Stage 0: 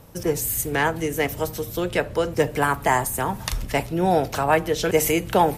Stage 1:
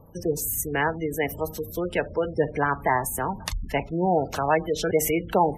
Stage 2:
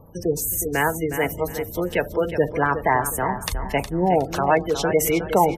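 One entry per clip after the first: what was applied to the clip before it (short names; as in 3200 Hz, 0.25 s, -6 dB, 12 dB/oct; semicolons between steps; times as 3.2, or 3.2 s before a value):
notches 60/120 Hz; spectral gate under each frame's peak -20 dB strong; gain -2.5 dB
feedback echo 0.364 s, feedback 29%, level -10 dB; gain +3 dB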